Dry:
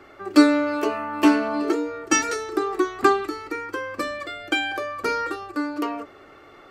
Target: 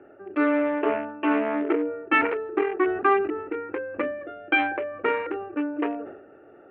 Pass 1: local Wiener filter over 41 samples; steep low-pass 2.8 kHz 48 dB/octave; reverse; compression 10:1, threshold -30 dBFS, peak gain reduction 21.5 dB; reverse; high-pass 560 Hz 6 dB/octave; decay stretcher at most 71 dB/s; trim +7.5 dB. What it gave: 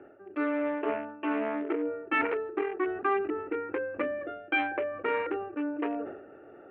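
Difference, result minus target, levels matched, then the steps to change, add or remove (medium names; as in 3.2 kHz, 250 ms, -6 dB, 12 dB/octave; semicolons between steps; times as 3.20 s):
compression: peak gain reduction +7.5 dB
change: compression 10:1, threshold -21.5 dBFS, peak gain reduction 13.5 dB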